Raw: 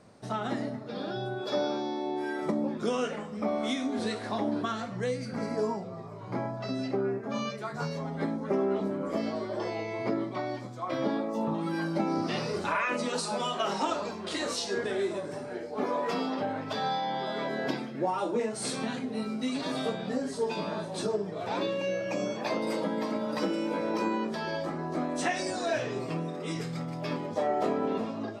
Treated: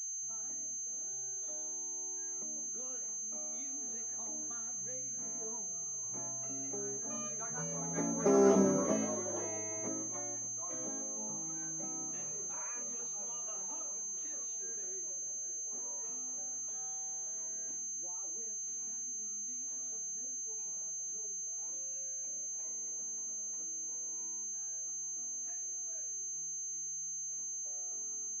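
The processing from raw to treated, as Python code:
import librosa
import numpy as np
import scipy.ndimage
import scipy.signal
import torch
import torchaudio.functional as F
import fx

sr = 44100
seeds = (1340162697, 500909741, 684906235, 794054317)

y = fx.doppler_pass(x, sr, speed_mps=10, closest_m=2.0, pass_at_s=8.56)
y = fx.pwm(y, sr, carrier_hz=6300.0)
y = y * librosa.db_to_amplitude(4.5)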